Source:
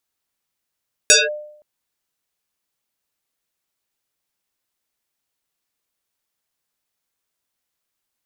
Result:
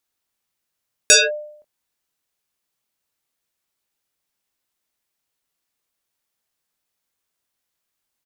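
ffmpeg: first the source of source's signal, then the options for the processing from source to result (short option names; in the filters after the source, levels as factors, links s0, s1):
-f lavfi -i "aevalsrc='0.562*pow(10,-3*t/0.69)*sin(2*PI*600*t+8.3*clip(1-t/0.19,0,1)*sin(2*PI*1.74*600*t))':d=0.52:s=44100"
-filter_complex "[0:a]asplit=2[s0][s1];[s1]adelay=23,volume=0.316[s2];[s0][s2]amix=inputs=2:normalize=0"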